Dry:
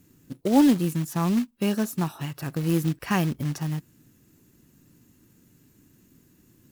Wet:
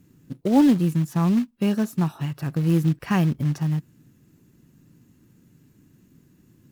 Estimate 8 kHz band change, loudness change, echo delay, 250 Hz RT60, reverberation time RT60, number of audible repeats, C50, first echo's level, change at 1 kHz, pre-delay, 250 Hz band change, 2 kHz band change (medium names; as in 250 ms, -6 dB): -5.0 dB, +3.0 dB, no echo, no reverb, no reverb, no echo, no reverb, no echo, 0.0 dB, no reverb, +2.5 dB, -1.0 dB